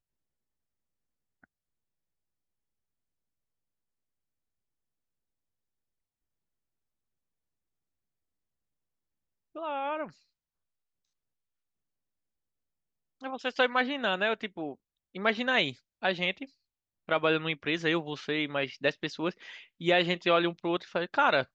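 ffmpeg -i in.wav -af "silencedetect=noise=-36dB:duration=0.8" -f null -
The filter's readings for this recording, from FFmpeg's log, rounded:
silence_start: 0.00
silence_end: 9.56 | silence_duration: 9.56
silence_start: 10.05
silence_end: 13.24 | silence_duration: 3.19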